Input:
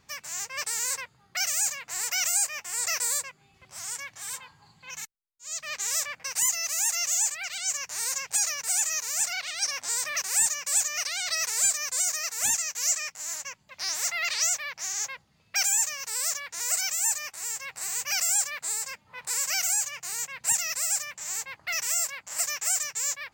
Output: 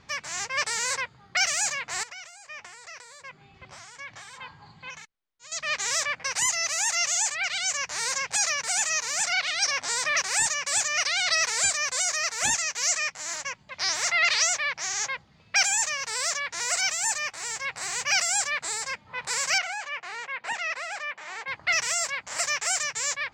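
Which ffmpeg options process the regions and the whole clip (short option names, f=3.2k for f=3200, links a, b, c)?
-filter_complex "[0:a]asettb=1/sr,asplit=3[a][b][c];[a]atrim=end=2.034[d];[b]atrim=start=2.03:end=5.52,asetpts=PTS-STARTPTS,afade=t=in:d=0.004:c=qsin,afade=t=out:st=3.486:d=0.004:c=qsin,acompressor=threshold=-40dB:ratio=16:attack=3.2:release=140:knee=1:detection=peak,highshelf=f=6.5k:g=-8[e];[c]atrim=start=5.516[f];[d][e]acrossfade=d=0.004:c1=hsin:c2=qsin[g];[g][f]acrossfade=d=0.004:c1=qsin:c2=hsin,asettb=1/sr,asplit=3[h][i][j];[h]atrim=end=19.584[k];[i]atrim=start=19.58:end=21.48,asetpts=PTS-STARTPTS,afade=t=in:d=0.004:c=qsin,afade=t=out:st=1.896:d=0.004:c=qsin,highpass=f=180:p=1,acrossover=split=260 3400:gain=0.2 1 0.0794[l][m][n];[l][m][n]amix=inputs=3:normalize=0[o];[j]atrim=start=21.476[p];[k][o]acrossfade=d=0.004:c1=hsin:c2=qsin[q];[q][p]acrossfade=d=0.004:c1=qsin:c2=hsin,lowpass=4.6k,bandreject=f=2.7k:w=24,volume=8dB"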